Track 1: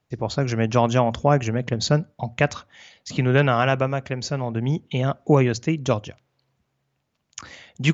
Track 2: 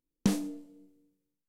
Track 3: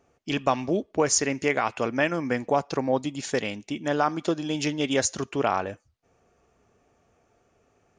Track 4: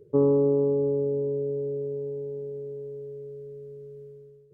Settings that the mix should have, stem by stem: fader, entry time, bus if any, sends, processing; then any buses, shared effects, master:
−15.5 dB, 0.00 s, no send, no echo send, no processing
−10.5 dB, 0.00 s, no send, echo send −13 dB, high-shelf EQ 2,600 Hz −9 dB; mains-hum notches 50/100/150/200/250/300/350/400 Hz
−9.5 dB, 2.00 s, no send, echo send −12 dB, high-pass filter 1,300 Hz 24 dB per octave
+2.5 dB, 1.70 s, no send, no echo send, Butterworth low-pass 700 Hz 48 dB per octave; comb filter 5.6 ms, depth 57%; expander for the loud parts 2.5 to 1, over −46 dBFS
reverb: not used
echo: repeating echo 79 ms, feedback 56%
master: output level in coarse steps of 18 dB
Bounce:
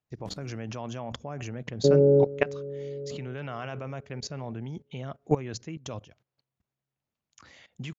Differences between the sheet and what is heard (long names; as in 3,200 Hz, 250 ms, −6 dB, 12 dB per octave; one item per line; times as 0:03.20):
stem 1 −15.5 dB → −4.5 dB
stem 3: muted
stem 4 +2.5 dB → +10.5 dB